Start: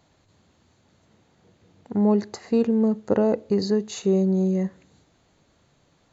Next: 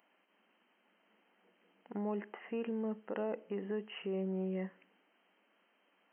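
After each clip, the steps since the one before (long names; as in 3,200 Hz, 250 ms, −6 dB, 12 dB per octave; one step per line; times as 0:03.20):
brickwall limiter −17.5 dBFS, peak gain reduction 9 dB
brick-wall band-pass 180–3,200 Hz
spectral tilt +3.5 dB per octave
level −7 dB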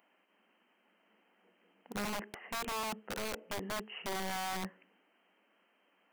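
wrap-around overflow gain 33.5 dB
level +1 dB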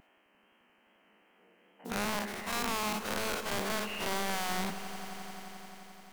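every bin's largest magnitude spread in time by 120 ms
tape wow and flutter 47 cents
echo that builds up and dies away 87 ms, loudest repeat 5, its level −17.5 dB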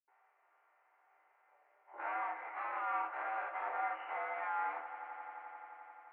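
convolution reverb RT60 0.15 s, pre-delay 76 ms
single-sideband voice off tune +110 Hz 490–2,100 Hz
level +18 dB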